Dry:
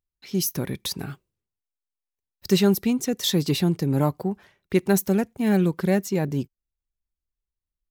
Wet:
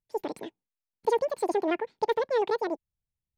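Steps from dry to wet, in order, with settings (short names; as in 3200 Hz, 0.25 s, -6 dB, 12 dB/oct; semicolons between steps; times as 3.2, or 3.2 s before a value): LPF 1400 Hz 12 dB/oct; bell 520 Hz -9.5 dB 0.48 oct; speed mistake 33 rpm record played at 78 rpm; gain -4 dB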